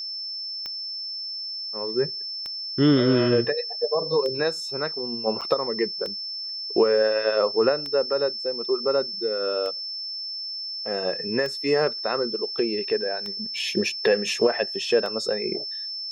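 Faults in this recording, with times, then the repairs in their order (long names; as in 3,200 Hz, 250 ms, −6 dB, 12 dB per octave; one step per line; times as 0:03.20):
scratch tick 33 1/3 rpm −19 dBFS
whistle 5,300 Hz −30 dBFS
0:05.41–0:05.42: drop-out 6.5 ms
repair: click removal
notch filter 5,300 Hz, Q 30
repair the gap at 0:05.41, 6.5 ms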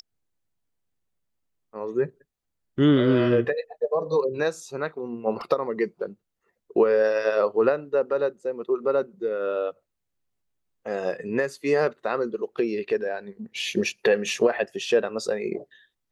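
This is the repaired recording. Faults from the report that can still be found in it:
none of them is left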